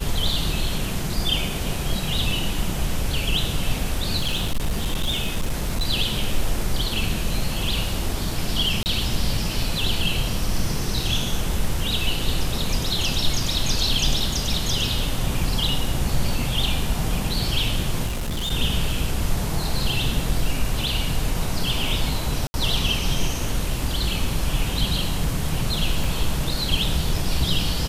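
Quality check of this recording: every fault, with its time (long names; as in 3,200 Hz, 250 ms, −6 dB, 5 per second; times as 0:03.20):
0:04.18–0:05.85: clipping −18 dBFS
0:08.83–0:08.86: drop-out 29 ms
0:18.06–0:18.52: clipping −22.5 dBFS
0:22.47–0:22.54: drop-out 70 ms
0:26.04: drop-out 2.8 ms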